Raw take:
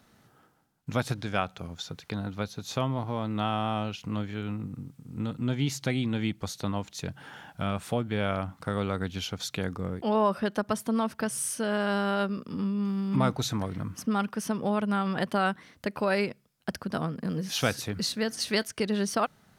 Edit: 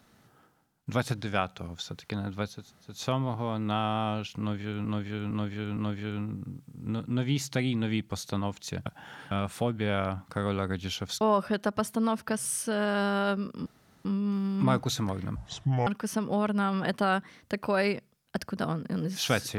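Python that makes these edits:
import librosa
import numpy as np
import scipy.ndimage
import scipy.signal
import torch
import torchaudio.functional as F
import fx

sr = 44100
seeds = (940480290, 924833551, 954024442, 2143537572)

y = fx.edit(x, sr, fx.insert_room_tone(at_s=2.6, length_s=0.31, crossfade_s=0.24),
    fx.repeat(start_s=4.08, length_s=0.46, count=4),
    fx.reverse_span(start_s=7.17, length_s=0.45),
    fx.cut(start_s=9.52, length_s=0.61),
    fx.insert_room_tone(at_s=12.58, length_s=0.39),
    fx.speed_span(start_s=13.89, length_s=0.31, speed=0.61), tone=tone)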